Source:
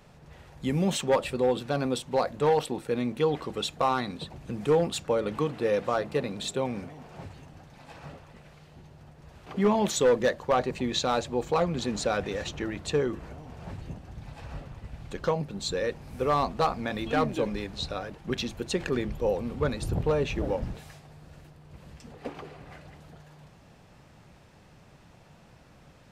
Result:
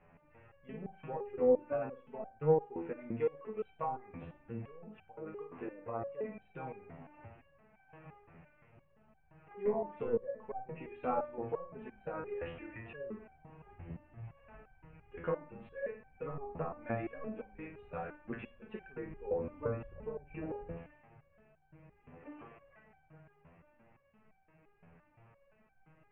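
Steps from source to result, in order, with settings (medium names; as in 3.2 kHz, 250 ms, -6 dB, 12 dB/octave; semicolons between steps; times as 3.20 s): steep low-pass 2.7 kHz 72 dB/octave; hum notches 60/120/180/240/300 Hz; low-pass that closes with the level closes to 560 Hz, closed at -20.5 dBFS; 3.92–6.02 s: compression 2.5:1, threshold -30 dBFS, peak gain reduction 7 dB; flange 1.1 Hz, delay 1.4 ms, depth 9.3 ms, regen +62%; flutter echo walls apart 9.2 m, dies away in 0.36 s; reverberation RT60 0.85 s, pre-delay 38 ms, DRR 16.5 dB; resonator arpeggio 5.8 Hz 84–770 Hz; trim +6 dB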